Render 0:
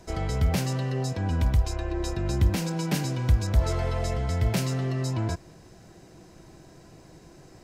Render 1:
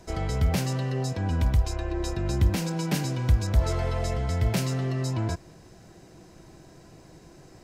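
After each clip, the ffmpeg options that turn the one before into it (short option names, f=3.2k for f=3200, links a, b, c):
-af anull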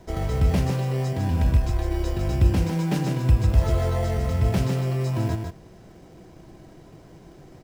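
-filter_complex "[0:a]highshelf=f=4.3k:g=-8,asplit=2[a][b];[b]acrusher=samples=17:mix=1:aa=0.000001,volume=-4dB[c];[a][c]amix=inputs=2:normalize=0,aecho=1:1:151:0.531,volume=-1.5dB"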